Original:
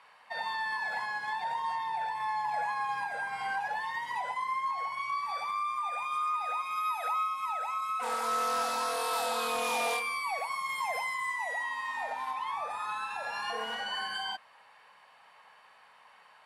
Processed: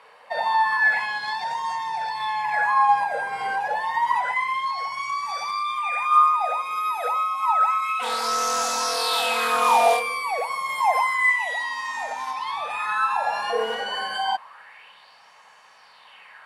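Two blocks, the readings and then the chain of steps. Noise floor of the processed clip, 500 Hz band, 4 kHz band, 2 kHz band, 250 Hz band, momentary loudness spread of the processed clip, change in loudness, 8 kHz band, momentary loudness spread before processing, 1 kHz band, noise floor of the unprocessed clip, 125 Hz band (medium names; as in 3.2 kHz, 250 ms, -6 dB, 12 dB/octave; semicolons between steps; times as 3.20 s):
-52 dBFS, +10.5 dB, +9.0 dB, +10.0 dB, +6.0 dB, 9 LU, +10.0 dB, +9.5 dB, 5 LU, +10.0 dB, -59 dBFS, no reading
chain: sweeping bell 0.29 Hz 450–6500 Hz +13 dB; trim +5.5 dB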